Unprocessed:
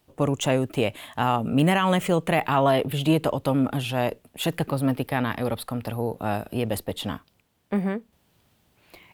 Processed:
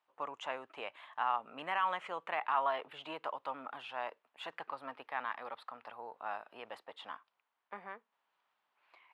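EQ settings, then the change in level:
four-pole ladder band-pass 1,200 Hz, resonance 45%
parametric band 840 Hz −4.5 dB 1.9 octaves
+4.0 dB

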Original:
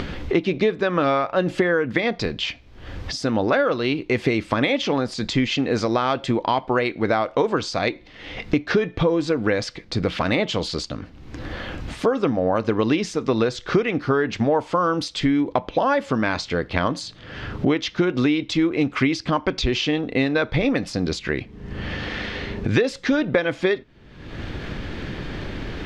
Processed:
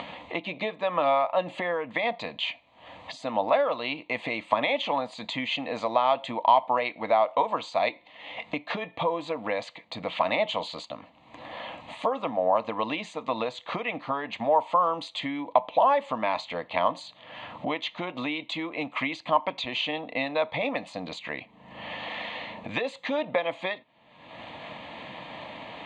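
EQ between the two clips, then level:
loudspeaker in its box 300–7,900 Hz, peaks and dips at 440 Hz +7 dB, 640 Hz +7 dB, 970 Hz +7 dB, 1,500 Hz +5 dB, 4,100 Hz +4 dB
phaser with its sweep stopped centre 1,500 Hz, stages 6
−3.5 dB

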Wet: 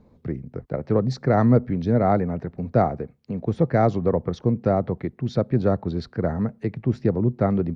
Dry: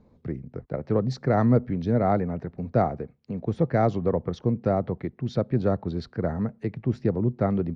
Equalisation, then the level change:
dynamic equaliser 3,000 Hz, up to −4 dB, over −57 dBFS, Q 4.9
+3.0 dB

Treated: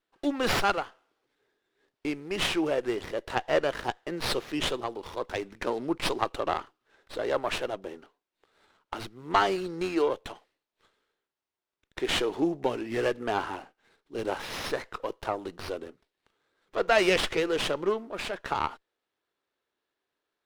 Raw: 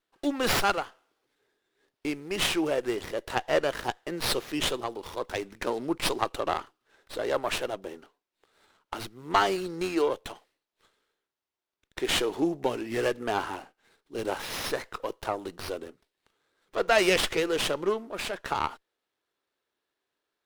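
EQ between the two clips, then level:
high-shelf EQ 7,400 Hz −10 dB
0.0 dB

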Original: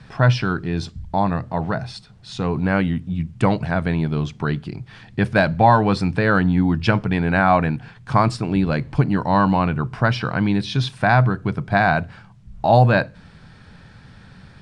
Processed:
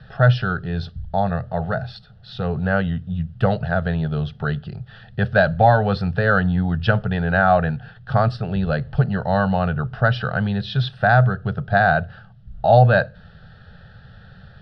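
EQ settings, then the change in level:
high-frequency loss of the air 160 metres
phaser with its sweep stopped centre 1,500 Hz, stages 8
+3.0 dB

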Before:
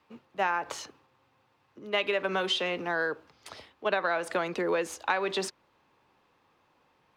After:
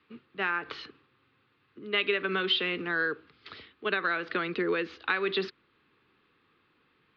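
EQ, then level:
Butterworth low-pass 4,400 Hz 48 dB per octave
low-shelf EQ 110 Hz −5 dB
flat-topped bell 730 Hz −13.5 dB 1.1 octaves
+2.5 dB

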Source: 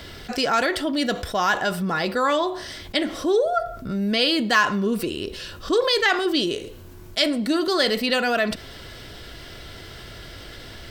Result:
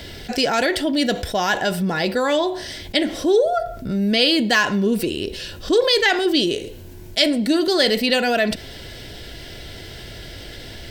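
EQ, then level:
parametric band 1,200 Hz −14 dB 0.38 octaves
+4.0 dB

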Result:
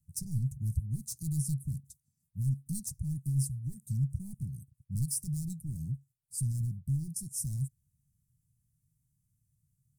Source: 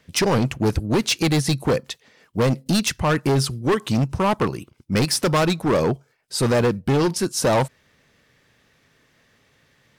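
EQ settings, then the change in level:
elliptic band-stop filter 140–8,900 Hz, stop band 50 dB
dynamic equaliser 5,100 Hz, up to +7 dB, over −53 dBFS, Q 1.3
−6.5 dB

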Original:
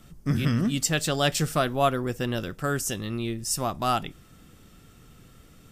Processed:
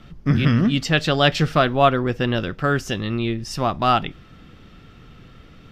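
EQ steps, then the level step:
high-frequency loss of the air 300 metres
high-shelf EQ 2,200 Hz +9.5 dB
+7.0 dB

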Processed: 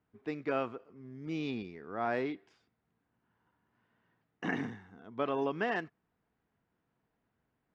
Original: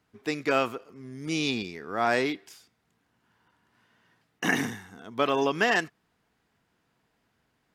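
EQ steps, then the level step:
head-to-tape spacing loss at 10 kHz 32 dB
−5.5 dB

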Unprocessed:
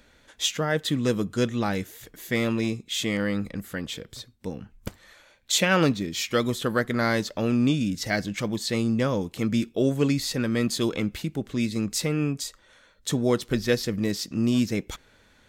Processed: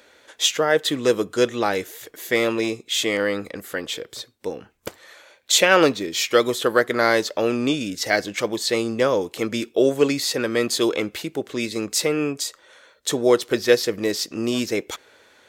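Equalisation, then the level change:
high-pass filter 91 Hz
low shelf with overshoot 280 Hz −10.5 dB, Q 1.5
+6.0 dB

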